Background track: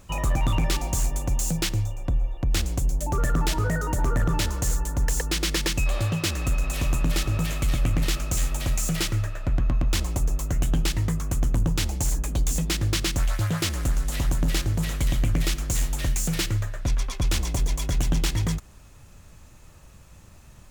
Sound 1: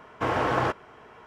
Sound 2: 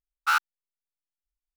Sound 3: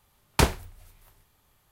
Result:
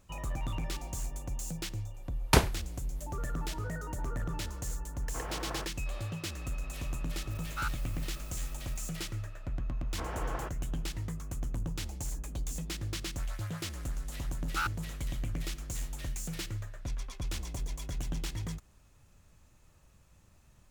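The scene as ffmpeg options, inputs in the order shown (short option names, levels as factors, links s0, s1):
-filter_complex "[1:a]asplit=2[s0][s1];[2:a]asplit=2[s2][s3];[0:a]volume=0.237[s4];[s0]acrusher=bits=7:mode=log:mix=0:aa=0.000001[s5];[s2]aeval=exprs='val(0)+0.5*0.0422*sgn(val(0))':c=same[s6];[3:a]atrim=end=1.71,asetpts=PTS-STARTPTS,volume=0.794,afade=t=in:d=0.004:c=hsin,afade=t=out:st=1.706:d=0.004:c=hsin,adelay=1940[s7];[s5]atrim=end=1.26,asetpts=PTS-STARTPTS,volume=0.158,afade=t=in:d=0.004:c=hsin,afade=t=out:st=1.256:d=0.004:c=hsin,adelay=217413S[s8];[s6]atrim=end=1.56,asetpts=PTS-STARTPTS,volume=0.178,afade=t=in:d=0.004:c=hsin,afade=t=out:st=1.556:d=0.004:c=hsin,adelay=321930S[s9];[s1]atrim=end=1.26,asetpts=PTS-STARTPTS,volume=0.188,afade=t=in:d=0.004:c=hsin,afade=t=out:st=1.256:d=0.004:c=hsin,adelay=9770[s10];[s3]atrim=end=1.56,asetpts=PTS-STARTPTS,volume=0.316,afade=t=in:d=0.004:c=hsin,afade=t=out:st=1.556:d=0.004:c=hsin,adelay=14290[s11];[s4][s7][s8][s9][s10][s11]amix=inputs=6:normalize=0"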